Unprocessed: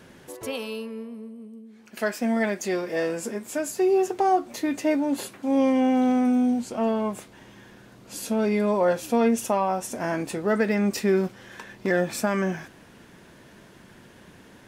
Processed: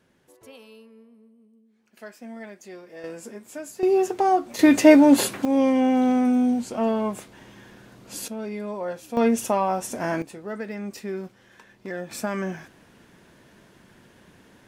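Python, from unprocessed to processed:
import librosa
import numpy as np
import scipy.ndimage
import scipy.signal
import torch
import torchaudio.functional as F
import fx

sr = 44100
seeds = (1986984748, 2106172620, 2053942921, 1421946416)

y = fx.gain(x, sr, db=fx.steps((0.0, -15.0), (3.04, -8.0), (3.83, 1.0), (4.59, 11.0), (5.45, 1.0), (8.28, -9.0), (9.17, 1.0), (10.22, -10.0), (12.11, -3.5)))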